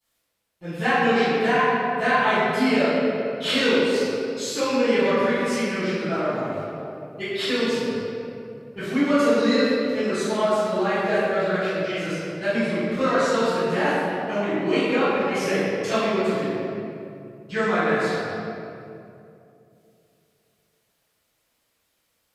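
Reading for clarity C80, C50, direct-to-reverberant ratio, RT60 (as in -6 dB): -2.5 dB, -5.0 dB, -19.5 dB, 2.7 s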